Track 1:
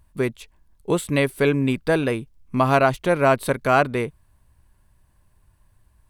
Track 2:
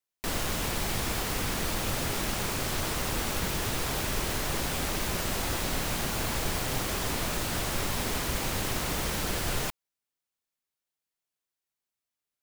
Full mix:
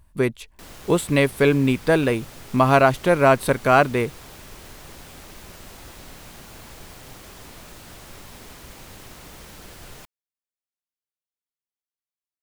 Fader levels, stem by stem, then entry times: +2.0, −12.0 decibels; 0.00, 0.35 seconds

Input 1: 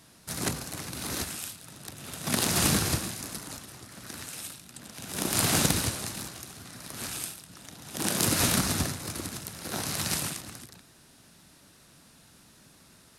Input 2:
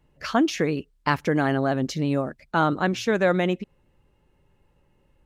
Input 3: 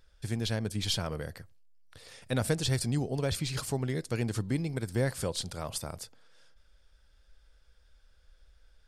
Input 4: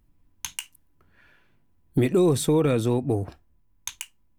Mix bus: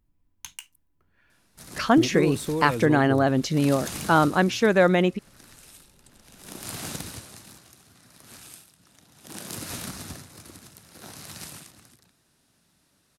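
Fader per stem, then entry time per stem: −10.5 dB, +2.5 dB, muted, −7.0 dB; 1.30 s, 1.55 s, muted, 0.00 s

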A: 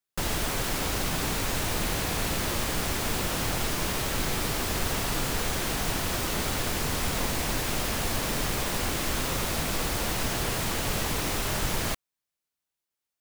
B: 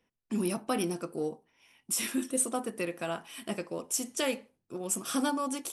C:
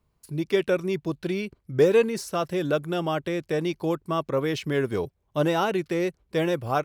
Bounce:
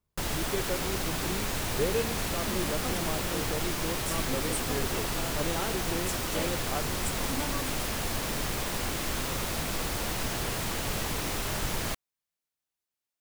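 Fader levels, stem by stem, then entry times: −3.0, −7.5, −11.0 decibels; 0.00, 2.15, 0.00 seconds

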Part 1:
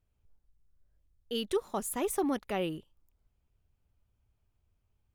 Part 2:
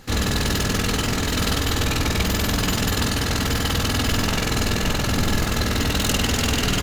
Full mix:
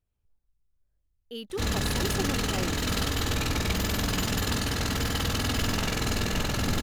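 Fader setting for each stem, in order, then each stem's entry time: −4.5, −6.0 decibels; 0.00, 1.50 seconds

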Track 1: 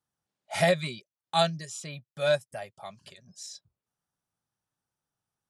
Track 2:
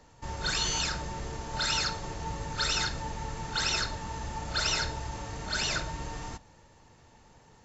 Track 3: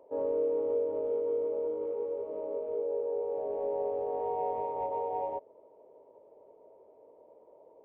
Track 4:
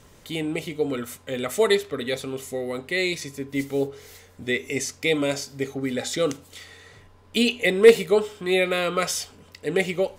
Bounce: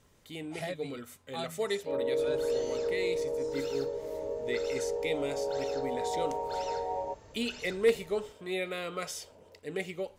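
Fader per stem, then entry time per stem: −14.5, −18.0, −0.5, −12.5 decibels; 0.00, 1.95, 1.75, 0.00 seconds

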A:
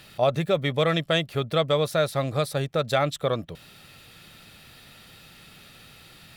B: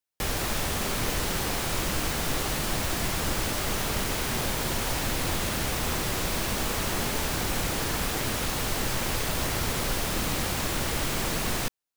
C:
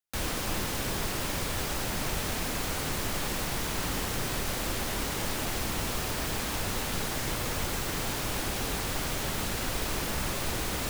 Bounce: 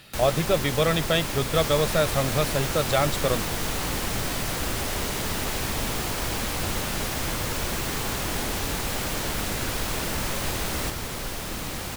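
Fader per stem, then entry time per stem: 0.0, −4.0, +1.5 decibels; 0.00, 1.35, 0.00 seconds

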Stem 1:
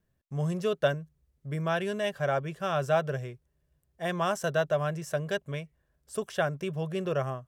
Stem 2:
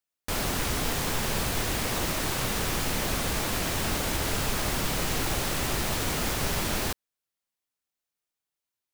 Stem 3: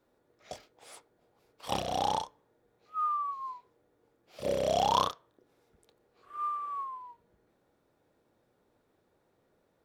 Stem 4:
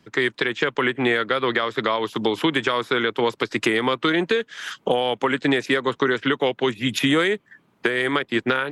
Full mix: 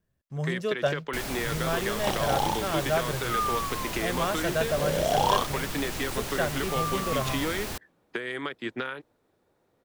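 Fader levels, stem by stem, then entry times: −1.0, −6.0, +2.0, −11.5 decibels; 0.00, 0.85, 0.35, 0.30 seconds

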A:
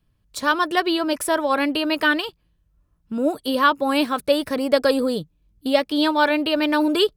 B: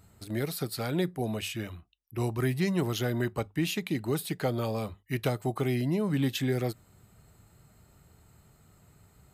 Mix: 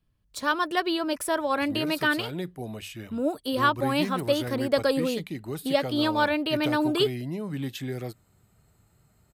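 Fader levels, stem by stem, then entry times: −5.5, −4.5 decibels; 0.00, 1.40 seconds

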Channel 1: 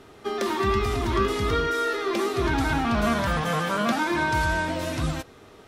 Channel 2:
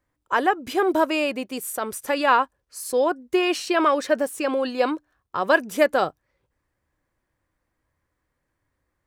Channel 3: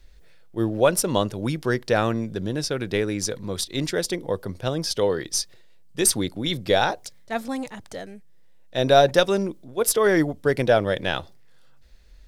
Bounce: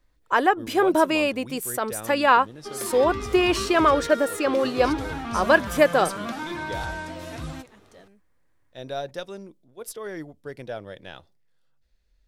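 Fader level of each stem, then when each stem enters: −8.0, +1.0, −16.0 decibels; 2.40, 0.00, 0.00 seconds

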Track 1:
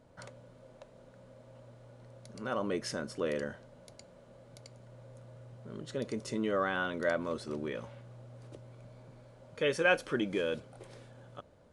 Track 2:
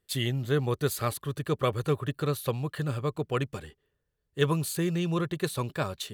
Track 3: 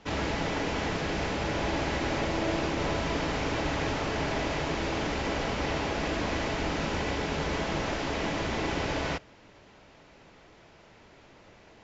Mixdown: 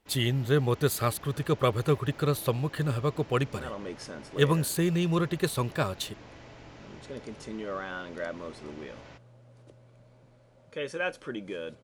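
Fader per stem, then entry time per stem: −4.5, +2.0, −19.5 decibels; 1.15, 0.00, 0.00 seconds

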